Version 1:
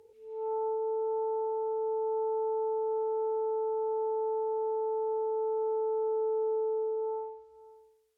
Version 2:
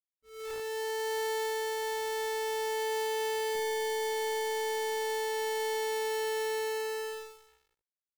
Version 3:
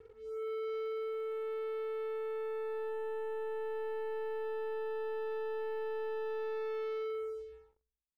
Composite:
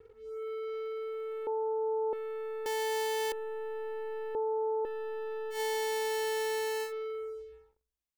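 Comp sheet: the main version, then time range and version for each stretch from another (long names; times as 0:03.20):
3
0:01.47–0:02.13: punch in from 1
0:02.66–0:03.32: punch in from 2
0:04.35–0:04.85: punch in from 1
0:05.55–0:06.88: punch in from 2, crossfade 0.10 s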